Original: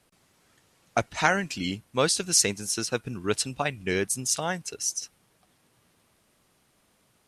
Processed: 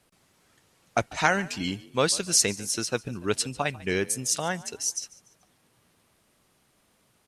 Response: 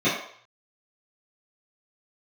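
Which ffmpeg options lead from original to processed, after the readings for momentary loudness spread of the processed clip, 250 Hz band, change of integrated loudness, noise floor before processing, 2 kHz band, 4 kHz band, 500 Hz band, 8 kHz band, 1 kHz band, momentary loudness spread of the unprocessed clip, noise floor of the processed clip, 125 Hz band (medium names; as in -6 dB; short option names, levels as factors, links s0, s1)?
9 LU, 0.0 dB, 0.0 dB, -67 dBFS, 0.0 dB, 0.0 dB, 0.0 dB, 0.0 dB, 0.0 dB, 9 LU, -67 dBFS, 0.0 dB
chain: -filter_complex "[0:a]asplit=4[s0][s1][s2][s3];[s1]adelay=145,afreqshift=48,volume=0.0944[s4];[s2]adelay=290,afreqshift=96,volume=0.0367[s5];[s3]adelay=435,afreqshift=144,volume=0.0143[s6];[s0][s4][s5][s6]amix=inputs=4:normalize=0"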